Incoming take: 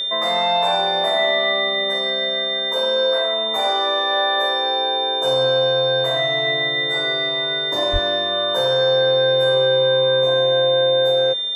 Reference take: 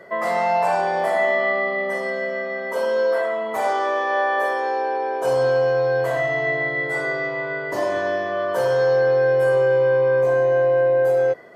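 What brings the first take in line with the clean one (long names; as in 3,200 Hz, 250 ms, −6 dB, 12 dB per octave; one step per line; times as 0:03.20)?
notch filter 3,600 Hz, Q 30
0:07.92–0:08.04: high-pass filter 140 Hz 24 dB per octave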